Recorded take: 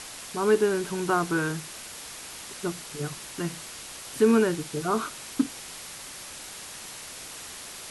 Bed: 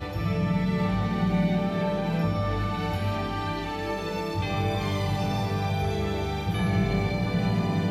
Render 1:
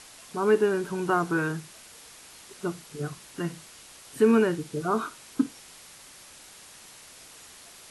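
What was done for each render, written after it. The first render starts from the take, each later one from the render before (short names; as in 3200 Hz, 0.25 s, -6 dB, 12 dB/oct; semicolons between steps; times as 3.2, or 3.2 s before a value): noise print and reduce 8 dB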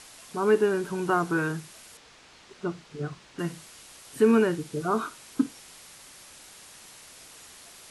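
1.97–3.39 air absorption 110 m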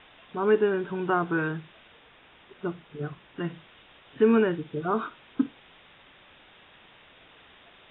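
Chebyshev low-pass 3700 Hz, order 10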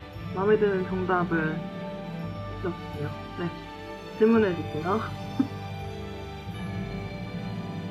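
add bed -9 dB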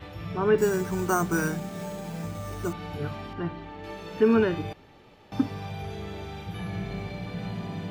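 0.58–2.73 careless resampling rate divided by 6×, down none, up hold; 3.33–3.84 LPF 1600 Hz 6 dB/oct; 4.73–5.32 room tone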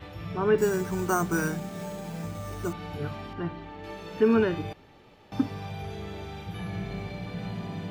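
gain -1 dB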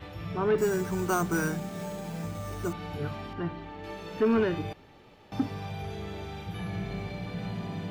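soft clip -18 dBFS, distortion -15 dB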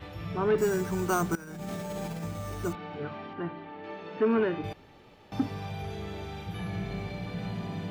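1.35–2.24 negative-ratio compressor -38 dBFS; 2.75–4.64 BPF 190–2900 Hz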